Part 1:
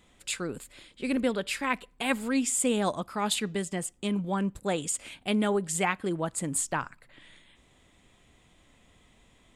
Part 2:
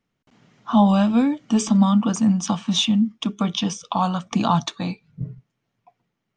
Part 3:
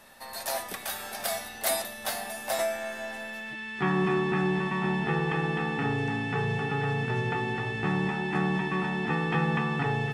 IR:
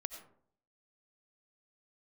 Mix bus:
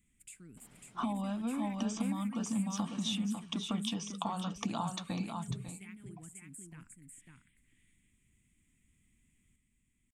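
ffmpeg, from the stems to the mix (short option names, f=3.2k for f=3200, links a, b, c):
-filter_complex "[0:a]firequalizer=gain_entry='entry(230,0);entry(570,-27);entry(2200,-2);entry(3900,-16);entry(8100,5)':delay=0.05:min_phase=1,alimiter=level_in=1dB:limit=-24dB:level=0:latency=1:release=253,volume=-1dB,acompressor=threshold=-41dB:ratio=2,volume=-10dB,asplit=2[a][b];[b]volume=-4dB[c];[1:a]adelay=300,volume=-5.5dB,asplit=2[d][e];[e]volume=-16.5dB[f];[d]acompressor=threshold=-33dB:ratio=10,volume=0dB[g];[c][f]amix=inputs=2:normalize=0,aecho=0:1:547:1[h];[a][g][h]amix=inputs=3:normalize=0"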